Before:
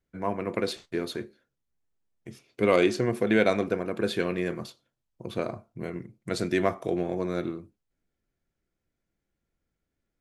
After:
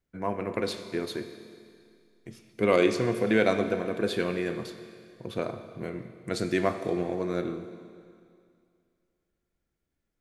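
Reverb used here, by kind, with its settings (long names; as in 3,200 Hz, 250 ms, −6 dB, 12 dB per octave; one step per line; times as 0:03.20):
four-comb reverb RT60 2.3 s, combs from 28 ms, DRR 9 dB
level −1 dB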